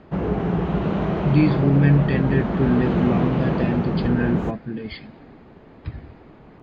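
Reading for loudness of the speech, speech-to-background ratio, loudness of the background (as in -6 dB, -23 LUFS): -22.0 LUFS, 1.5 dB, -23.5 LUFS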